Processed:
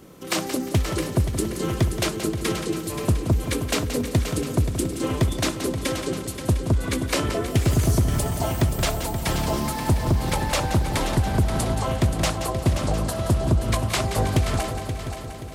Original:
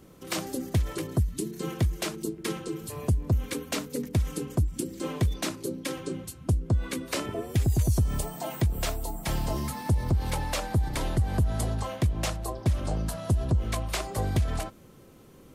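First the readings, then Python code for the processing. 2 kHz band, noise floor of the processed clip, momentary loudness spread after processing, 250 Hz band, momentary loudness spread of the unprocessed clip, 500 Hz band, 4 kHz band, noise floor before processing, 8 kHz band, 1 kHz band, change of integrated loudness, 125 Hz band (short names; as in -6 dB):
+8.0 dB, -33 dBFS, 4 LU, +7.0 dB, 7 LU, +8.0 dB, +8.0 dB, -52 dBFS, +7.0 dB, +8.0 dB, +5.5 dB, +4.5 dB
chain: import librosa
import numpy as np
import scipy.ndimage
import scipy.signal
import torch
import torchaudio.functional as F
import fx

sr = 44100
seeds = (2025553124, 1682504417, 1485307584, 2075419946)

p1 = fx.low_shelf(x, sr, hz=110.0, db=-6.5)
p2 = p1 + fx.echo_heads(p1, sr, ms=176, heads='first and third', feedback_pct=58, wet_db=-10.0, dry=0)
p3 = fx.doppler_dist(p2, sr, depth_ms=0.26)
y = p3 * librosa.db_to_amplitude(7.0)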